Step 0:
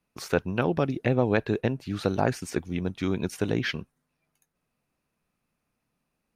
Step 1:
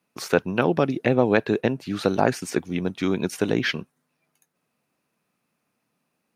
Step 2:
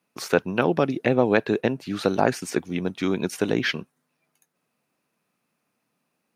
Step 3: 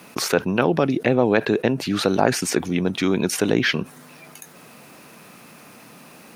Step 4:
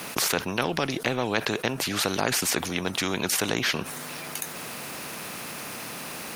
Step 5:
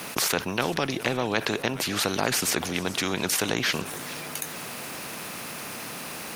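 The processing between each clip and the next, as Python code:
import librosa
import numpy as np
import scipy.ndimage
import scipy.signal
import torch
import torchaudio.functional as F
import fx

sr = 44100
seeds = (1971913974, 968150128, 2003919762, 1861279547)

y1 = scipy.signal.sosfilt(scipy.signal.butter(2, 160.0, 'highpass', fs=sr, output='sos'), x)
y1 = y1 * librosa.db_to_amplitude(5.0)
y2 = fx.low_shelf(y1, sr, hz=85.0, db=-7.0)
y3 = fx.env_flatten(y2, sr, amount_pct=50)
y4 = fx.spectral_comp(y3, sr, ratio=2.0)
y4 = y4 * librosa.db_to_amplitude(-4.0)
y5 = fx.echo_warbled(y4, sr, ms=423, feedback_pct=54, rate_hz=2.8, cents=137, wet_db=-17)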